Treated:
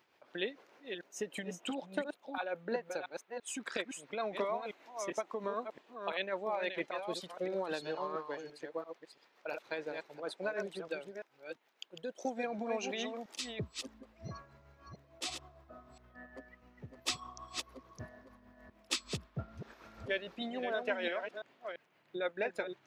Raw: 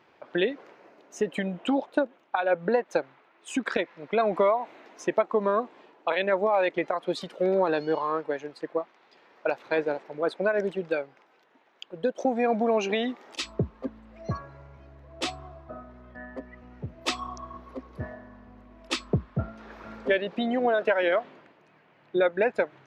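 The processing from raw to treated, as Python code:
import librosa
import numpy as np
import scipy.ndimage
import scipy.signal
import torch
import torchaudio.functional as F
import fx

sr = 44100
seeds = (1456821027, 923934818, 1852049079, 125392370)

y = fx.reverse_delay(x, sr, ms=340, wet_db=-6)
y = y * (1.0 - 0.43 / 2.0 + 0.43 / 2.0 * np.cos(2.0 * np.pi * 6.6 * (np.arange(len(y)) / sr)))
y = librosa.effects.preemphasis(y, coef=0.8, zi=[0.0])
y = y * 10.0 ** (2.0 / 20.0)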